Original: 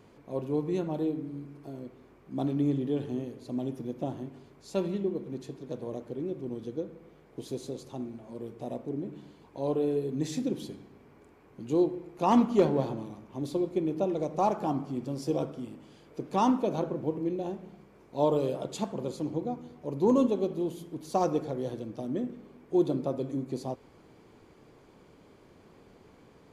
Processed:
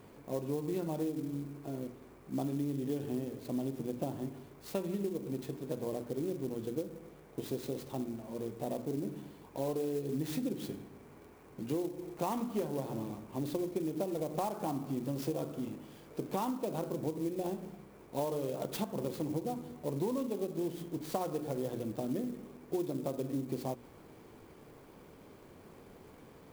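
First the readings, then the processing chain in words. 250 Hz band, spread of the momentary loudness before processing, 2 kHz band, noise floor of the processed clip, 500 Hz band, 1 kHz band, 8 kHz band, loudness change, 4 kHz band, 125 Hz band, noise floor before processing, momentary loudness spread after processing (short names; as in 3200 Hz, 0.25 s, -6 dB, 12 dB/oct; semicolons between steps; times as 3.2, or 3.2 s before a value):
-6.0 dB, 16 LU, -3.0 dB, -56 dBFS, -6.0 dB, -8.0 dB, 0.0 dB, -6.5 dB, -3.0 dB, -4.0 dB, -58 dBFS, 19 LU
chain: notches 60/120/180/240/300/360/420 Hz; compressor 12:1, threshold -33 dBFS, peak gain reduction 16 dB; clock jitter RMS 0.038 ms; gain +2 dB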